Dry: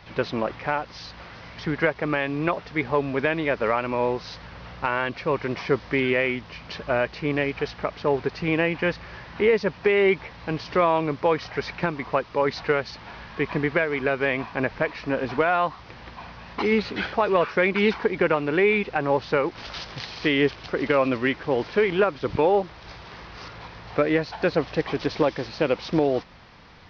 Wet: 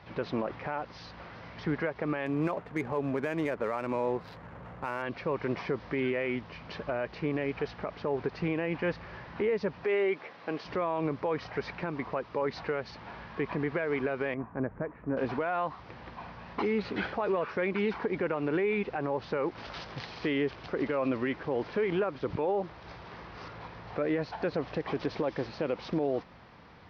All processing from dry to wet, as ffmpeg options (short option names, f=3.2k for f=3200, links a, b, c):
-filter_complex "[0:a]asettb=1/sr,asplit=3[a][b][c];[a]atrim=end=2.264[d];[b]atrim=start=2.26:end=5.02,asetpts=PTS-STARTPTS,afade=t=in:d=0.004:c=qsin,afade=t=out:st=2.756:d=0.004:c=qsin,adynamicsmooth=sensitivity=7:basefreq=1.4k,highpass=59[e];[c]atrim=start=5.016[f];[d][e]acrossfade=d=0.004:c1=hsin:c2=qsin[g];[g][f]acrossfade=d=0.004:c1=qsin:c2=hsin,asettb=1/sr,asplit=3[h][i][j];[h]atrim=end=9.844[k];[i]atrim=start=9.84:end=10.65,asetpts=PTS-STARTPTS,afade=t=in:d=0.004:c=qsin,afade=t=out:st=0.806:d=0.004:c=qsin,highpass=300,bandreject=f=920:w=9.5[l];[j]atrim=start=10.646[m];[k][l]acrossfade=d=0.004:c1=hsin:c2=qsin[n];[n][m]acrossfade=d=0.004:c1=qsin:c2=hsin,asettb=1/sr,asplit=3[o][p][q];[o]atrim=end=14.344[r];[p]atrim=start=14.34:end=15.17,asetpts=PTS-STARTPTS,afade=t=in:d=0.004:c=qsin,afade=t=out:st=0.826:d=0.004:c=qsin,lowpass=f=1.5k:w=0.5412,lowpass=f=1.5k:w=1.3066,equalizer=f=900:w=0.6:g=-8.5[s];[q]atrim=start=15.166[t];[r][s]acrossfade=d=0.004:c1=hsin:c2=qsin[u];[u][t]acrossfade=d=0.004:c1=qsin:c2=hsin,highpass=f=90:p=1,highshelf=f=2.5k:g=-11.5,alimiter=limit=-19.5dB:level=0:latency=1:release=68,volume=-1.5dB"